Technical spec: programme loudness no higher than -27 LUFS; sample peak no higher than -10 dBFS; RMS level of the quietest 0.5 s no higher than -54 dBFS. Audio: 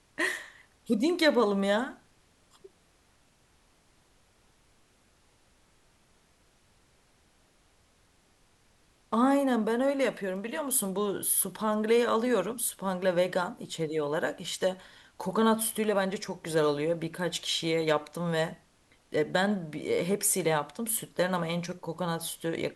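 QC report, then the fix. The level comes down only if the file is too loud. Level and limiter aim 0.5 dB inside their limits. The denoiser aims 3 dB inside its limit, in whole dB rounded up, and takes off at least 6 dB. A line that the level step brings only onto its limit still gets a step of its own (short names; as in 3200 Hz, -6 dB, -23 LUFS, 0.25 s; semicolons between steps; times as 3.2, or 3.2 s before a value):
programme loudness -29.0 LUFS: OK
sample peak -11.5 dBFS: OK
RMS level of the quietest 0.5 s -65 dBFS: OK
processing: none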